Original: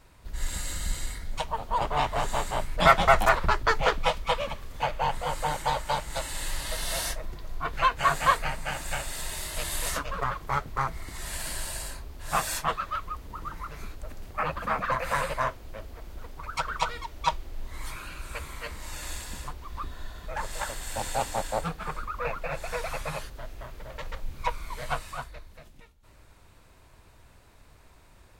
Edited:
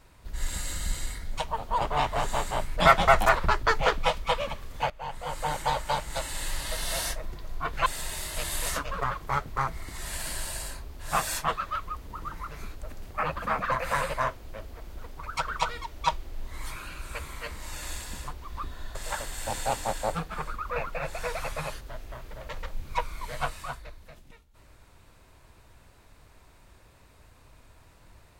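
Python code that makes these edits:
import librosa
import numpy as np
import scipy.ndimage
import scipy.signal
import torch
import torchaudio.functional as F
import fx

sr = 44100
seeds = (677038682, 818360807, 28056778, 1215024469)

y = fx.edit(x, sr, fx.fade_in_from(start_s=4.9, length_s=0.67, floor_db=-17.5),
    fx.cut(start_s=7.86, length_s=1.2),
    fx.cut(start_s=20.15, length_s=0.29), tone=tone)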